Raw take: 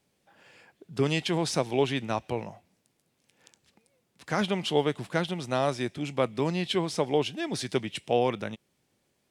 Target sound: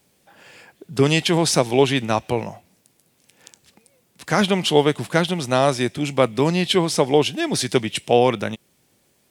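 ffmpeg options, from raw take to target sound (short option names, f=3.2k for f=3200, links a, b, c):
-af "highshelf=f=8.6k:g=9.5,volume=9dB"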